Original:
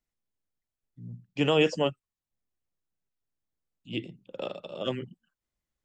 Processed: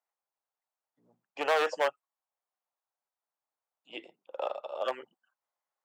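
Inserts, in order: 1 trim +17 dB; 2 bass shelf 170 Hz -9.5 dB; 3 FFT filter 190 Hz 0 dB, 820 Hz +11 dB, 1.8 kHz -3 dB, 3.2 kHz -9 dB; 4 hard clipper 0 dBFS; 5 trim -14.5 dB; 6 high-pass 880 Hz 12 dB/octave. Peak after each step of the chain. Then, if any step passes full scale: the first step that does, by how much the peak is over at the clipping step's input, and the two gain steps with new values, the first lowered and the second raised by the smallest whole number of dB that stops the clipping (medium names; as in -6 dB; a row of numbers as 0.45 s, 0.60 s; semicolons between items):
+5.5 dBFS, +4.5 dBFS, +9.5 dBFS, 0.0 dBFS, -14.5 dBFS, -13.5 dBFS; step 1, 9.5 dB; step 1 +7 dB, step 5 -4.5 dB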